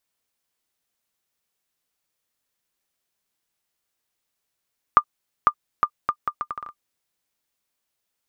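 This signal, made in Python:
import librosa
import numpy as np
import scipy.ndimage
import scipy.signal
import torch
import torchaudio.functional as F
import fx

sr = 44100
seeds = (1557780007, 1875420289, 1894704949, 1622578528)

y = fx.bouncing_ball(sr, first_gap_s=0.5, ratio=0.72, hz=1200.0, decay_ms=70.0, level_db=-2.0)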